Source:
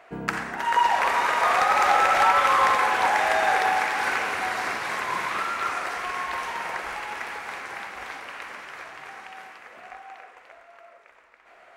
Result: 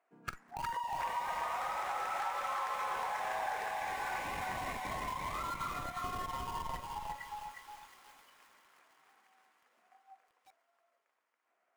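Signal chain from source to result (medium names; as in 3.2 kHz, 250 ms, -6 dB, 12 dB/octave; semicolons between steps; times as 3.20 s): median filter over 9 samples; high-pass 130 Hz 24 dB/octave; hum notches 50/100/150/200 Hz; spectral noise reduction 23 dB; ten-band graphic EQ 250 Hz +6 dB, 1 kHz +4 dB, 8 kHz +5 dB; in parallel at -7 dB: Schmitt trigger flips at -27 dBFS; on the sum: feedback echo behind a high-pass 338 ms, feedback 72%, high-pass 2.3 kHz, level -14 dB; compression 5:1, threshold -32 dBFS, peak gain reduction 18 dB; bit-crushed delay 360 ms, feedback 35%, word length 9-bit, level -3 dB; trim -6.5 dB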